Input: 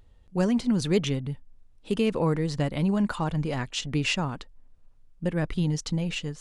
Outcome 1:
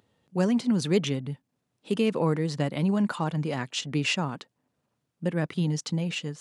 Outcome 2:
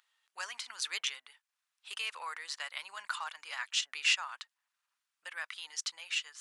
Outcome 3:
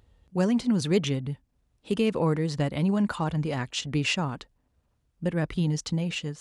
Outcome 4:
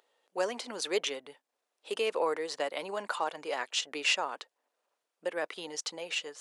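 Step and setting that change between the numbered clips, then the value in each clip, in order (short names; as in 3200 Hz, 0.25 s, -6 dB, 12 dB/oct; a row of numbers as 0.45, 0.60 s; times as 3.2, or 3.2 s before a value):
HPF, cutoff: 130, 1200, 42, 460 Hz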